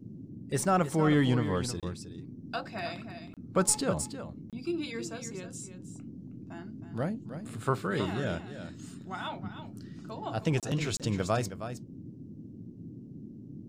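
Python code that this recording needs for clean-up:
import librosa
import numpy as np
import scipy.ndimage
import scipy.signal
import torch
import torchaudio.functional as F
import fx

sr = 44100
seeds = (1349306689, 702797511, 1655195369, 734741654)

y = fx.fix_interpolate(x, sr, at_s=(1.8, 3.34, 4.5, 10.6, 10.97), length_ms=27.0)
y = fx.noise_reduce(y, sr, print_start_s=12.28, print_end_s=12.78, reduce_db=29.0)
y = fx.fix_echo_inverse(y, sr, delay_ms=316, level_db=-10.5)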